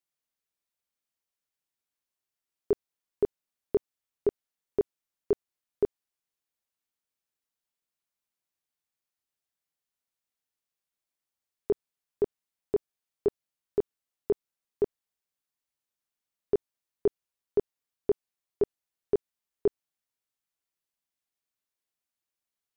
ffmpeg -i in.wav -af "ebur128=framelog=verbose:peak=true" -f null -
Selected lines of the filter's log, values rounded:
Integrated loudness:
  I:         -33.2 LUFS
  Threshold: -43.3 LUFS
Loudness range:
  LRA:         7.4 LU
  Threshold: -56.1 LUFS
  LRA low:   -41.3 LUFS
  LRA high:  -33.9 LUFS
True peak:
  Peak:      -16.7 dBFS